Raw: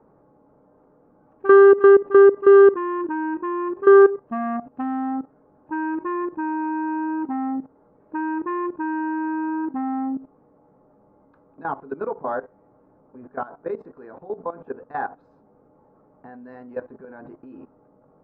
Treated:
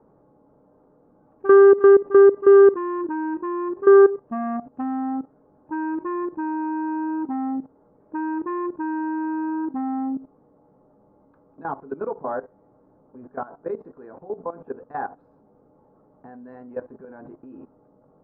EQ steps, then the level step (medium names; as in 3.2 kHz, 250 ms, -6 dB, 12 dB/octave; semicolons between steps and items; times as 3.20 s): low-pass 1.2 kHz 6 dB/octave; 0.0 dB